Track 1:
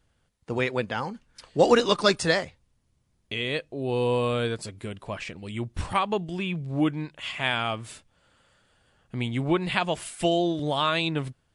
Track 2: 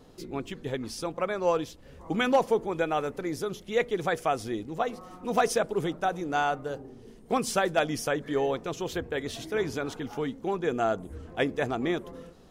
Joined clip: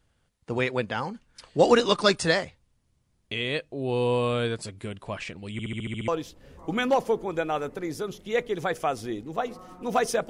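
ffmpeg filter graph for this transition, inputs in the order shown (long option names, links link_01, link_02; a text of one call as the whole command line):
ffmpeg -i cue0.wav -i cue1.wav -filter_complex "[0:a]apad=whole_dur=10.29,atrim=end=10.29,asplit=8[link_01][link_02][link_03][link_04][link_05][link_06][link_07][link_08];[link_01]atrim=end=5.592[link_09];[link_02]atrim=start=5.518:end=5.592[link_10];[link_03]atrim=start=5.518:end=5.592[link_11];[link_04]atrim=start=5.518:end=5.592[link_12];[link_05]atrim=start=5.518:end=5.592[link_13];[link_06]atrim=start=5.518:end=5.592[link_14];[link_07]atrim=start=5.518:end=5.592[link_15];[link_08]atrim=start=5.518:end=5.592[link_16];[1:a]atrim=start=1.498:end=5.71[link_17];[link_09][link_10]acrossfade=duration=0.004:curve1=hsin:curve2=hsin[link_18];[link_18][link_11]acrossfade=duration=0.004:curve1=hsin:curve2=hsin[link_19];[link_19][link_12]acrossfade=duration=0.004:curve1=hsin:curve2=hsin[link_20];[link_20][link_13]acrossfade=duration=0.004:curve1=hsin:curve2=hsin[link_21];[link_21][link_14]acrossfade=duration=0.004:curve1=hsin:curve2=hsin[link_22];[link_22][link_15]acrossfade=duration=0.004:curve1=hsin:curve2=hsin[link_23];[link_23][link_16]acrossfade=duration=0.004:curve1=hsin:curve2=hsin[link_24];[link_24][link_17]acrossfade=duration=0.004:curve1=hsin:curve2=hsin" out.wav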